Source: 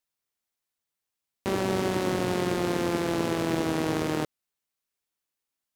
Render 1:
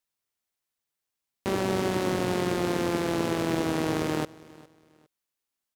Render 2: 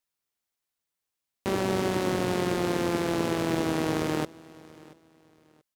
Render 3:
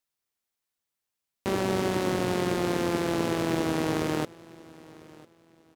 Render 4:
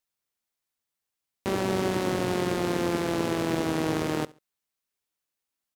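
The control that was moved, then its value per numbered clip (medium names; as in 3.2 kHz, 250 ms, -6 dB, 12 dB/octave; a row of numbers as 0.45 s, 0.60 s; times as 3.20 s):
feedback delay, time: 407 ms, 682 ms, 999 ms, 69 ms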